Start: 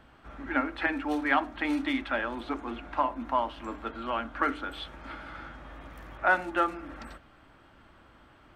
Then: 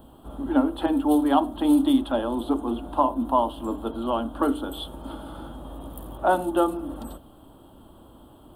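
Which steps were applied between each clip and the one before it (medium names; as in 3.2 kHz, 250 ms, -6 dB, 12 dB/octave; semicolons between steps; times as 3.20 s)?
FFT filter 140 Hz 0 dB, 260 Hz +4 dB, 1 kHz -2 dB, 2.2 kHz -29 dB, 3.2 kHz -1 dB, 5.7 kHz -16 dB, 9.7 kHz +14 dB; trim +7.5 dB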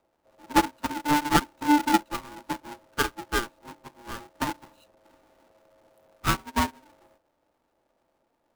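square wave that keeps the level; ring modulator 590 Hz; upward expansion 2.5:1, over -31 dBFS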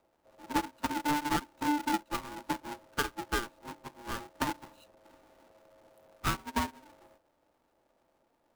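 compression 8:1, threshold -27 dBFS, peak gain reduction 12.5 dB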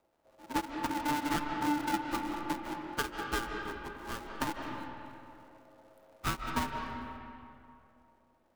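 reverberation RT60 2.6 s, pre-delay 115 ms, DRR 2.5 dB; trim -2.5 dB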